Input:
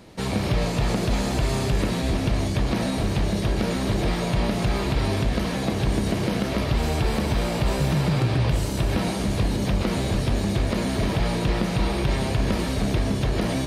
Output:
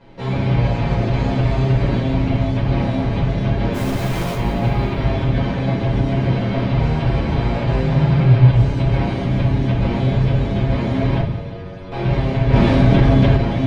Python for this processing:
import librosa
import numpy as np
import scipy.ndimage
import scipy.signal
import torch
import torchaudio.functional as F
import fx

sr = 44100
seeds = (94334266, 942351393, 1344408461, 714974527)

y = scipy.signal.sosfilt(scipy.signal.butter(2, 2900.0, 'lowpass', fs=sr, output='sos'), x)
y = y + 0.33 * np.pad(y, (int(7.3 * sr / 1000.0), 0))[:len(y)]
y = fx.quant_companded(y, sr, bits=2, at=(3.73, 4.35), fade=0.02)
y = fx.stiff_resonator(y, sr, f0_hz=91.0, decay_s=0.63, stiffness=0.002, at=(11.2, 11.92))
y = fx.echo_feedback(y, sr, ms=176, feedback_pct=58, wet_db=-12.5)
y = fx.room_shoebox(y, sr, seeds[0], volume_m3=310.0, walls='furnished', distance_m=5.0)
y = fx.env_flatten(y, sr, amount_pct=50, at=(12.52, 13.36), fade=0.02)
y = y * 10.0 ** (-6.5 / 20.0)